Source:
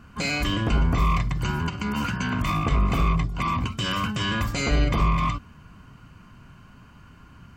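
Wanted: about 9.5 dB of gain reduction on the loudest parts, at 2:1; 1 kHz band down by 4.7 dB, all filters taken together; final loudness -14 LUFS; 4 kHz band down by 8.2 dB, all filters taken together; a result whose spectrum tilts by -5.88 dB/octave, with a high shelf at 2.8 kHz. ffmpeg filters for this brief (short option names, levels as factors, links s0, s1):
-af "equalizer=f=1000:t=o:g=-4,highshelf=f=2800:g=-7,equalizer=f=4000:t=o:g=-6,acompressor=threshold=0.0178:ratio=2,volume=10"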